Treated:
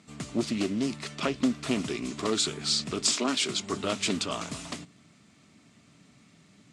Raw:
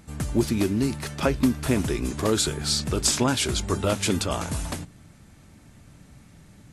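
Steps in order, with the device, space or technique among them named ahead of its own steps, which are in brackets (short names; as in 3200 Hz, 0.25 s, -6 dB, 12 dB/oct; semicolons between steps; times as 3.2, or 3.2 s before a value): 3.13–3.71 HPF 290 Hz -> 70 Hz 24 dB/oct; full-range speaker at full volume (Doppler distortion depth 0.4 ms; speaker cabinet 240–7900 Hz, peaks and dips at 340 Hz -5 dB, 520 Hz -9 dB, 850 Hz -10 dB, 1600 Hz -8 dB, 6100 Hz -3 dB)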